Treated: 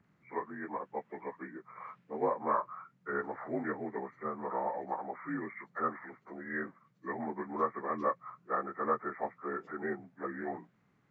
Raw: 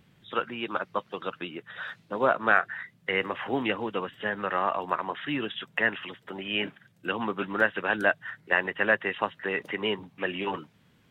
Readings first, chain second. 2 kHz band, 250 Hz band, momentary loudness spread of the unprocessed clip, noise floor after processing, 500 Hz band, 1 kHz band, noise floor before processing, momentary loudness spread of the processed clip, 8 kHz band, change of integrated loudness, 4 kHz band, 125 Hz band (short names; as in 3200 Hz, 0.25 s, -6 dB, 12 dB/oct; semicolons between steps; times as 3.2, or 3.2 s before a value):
-16.0 dB, -6.0 dB, 12 LU, -71 dBFS, -7.0 dB, -5.0 dB, -63 dBFS, 12 LU, n/a, -8.5 dB, under -40 dB, -8.0 dB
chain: inharmonic rescaling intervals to 82%; high shelf 3500 Hz -9 dB; gain -5.5 dB